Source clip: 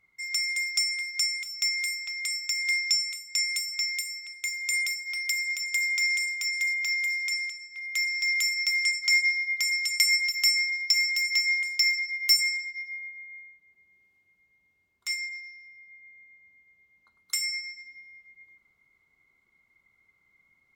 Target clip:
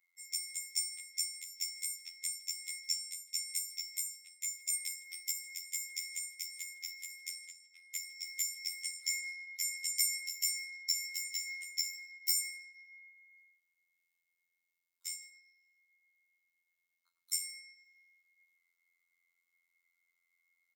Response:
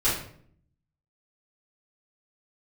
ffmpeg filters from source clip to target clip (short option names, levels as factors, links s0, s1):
-af "afftfilt=real='hypot(re,im)*cos(PI*b)':imag='0':win_size=2048:overlap=0.75,aeval=exprs='0.422*(cos(1*acos(clip(val(0)/0.422,-1,1)))-cos(1*PI/2))+0.00376*(cos(4*acos(clip(val(0)/0.422,-1,1)))-cos(4*PI/2))+0.0944*(cos(5*acos(clip(val(0)/0.422,-1,1)))-cos(5*PI/2))+0.0119*(cos(7*acos(clip(val(0)/0.422,-1,1)))-cos(7*PI/2))+0.00376*(cos(8*acos(clip(val(0)/0.422,-1,1)))-cos(8*PI/2))':c=same,aderivative,aecho=1:1:158:0.0708,volume=0.596"